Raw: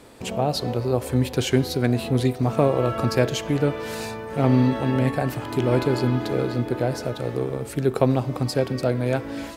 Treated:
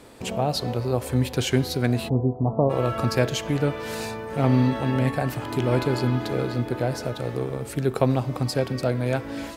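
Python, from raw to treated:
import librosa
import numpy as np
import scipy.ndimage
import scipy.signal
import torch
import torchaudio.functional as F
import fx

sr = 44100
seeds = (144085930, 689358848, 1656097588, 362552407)

y = fx.steep_lowpass(x, sr, hz=1000.0, slope=48, at=(2.08, 2.69), fade=0.02)
y = fx.dynamic_eq(y, sr, hz=370.0, q=0.95, threshold_db=-30.0, ratio=4.0, max_db=-3)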